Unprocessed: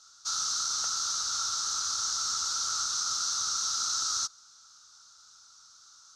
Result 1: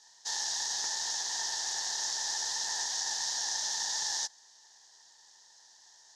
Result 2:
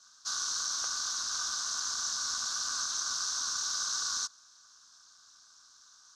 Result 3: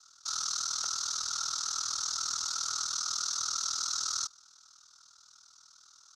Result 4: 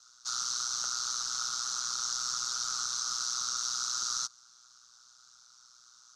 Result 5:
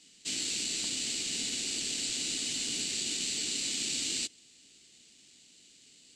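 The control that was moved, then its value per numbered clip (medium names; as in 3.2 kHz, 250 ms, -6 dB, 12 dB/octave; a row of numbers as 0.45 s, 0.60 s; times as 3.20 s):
ring modulator, frequency: 450 Hz, 160 Hz, 20 Hz, 61 Hz, 1.6 kHz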